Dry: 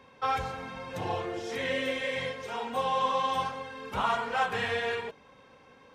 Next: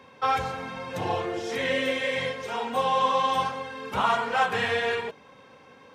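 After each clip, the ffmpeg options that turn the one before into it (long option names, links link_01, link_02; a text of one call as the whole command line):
ffmpeg -i in.wav -af "highpass=87,volume=4.5dB" out.wav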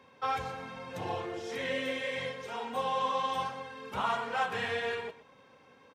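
ffmpeg -i in.wav -af "aecho=1:1:122:0.158,volume=-7.5dB" out.wav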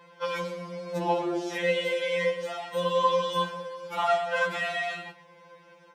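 ffmpeg -i in.wav -af "afftfilt=real='re*2.83*eq(mod(b,8),0)':imag='im*2.83*eq(mod(b,8),0)':win_size=2048:overlap=0.75,volume=7.5dB" out.wav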